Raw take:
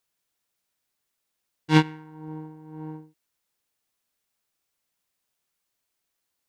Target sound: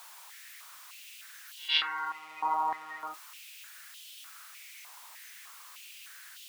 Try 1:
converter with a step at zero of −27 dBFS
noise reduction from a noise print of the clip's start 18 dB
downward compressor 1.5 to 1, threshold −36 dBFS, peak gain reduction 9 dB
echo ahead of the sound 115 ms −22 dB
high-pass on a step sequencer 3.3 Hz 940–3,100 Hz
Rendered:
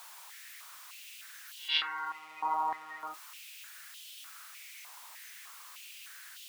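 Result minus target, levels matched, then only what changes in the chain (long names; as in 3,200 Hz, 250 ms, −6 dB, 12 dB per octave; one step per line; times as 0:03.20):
downward compressor: peak gain reduction +2.5 dB
change: downward compressor 1.5 to 1, threshold −28 dBFS, peak gain reduction 6 dB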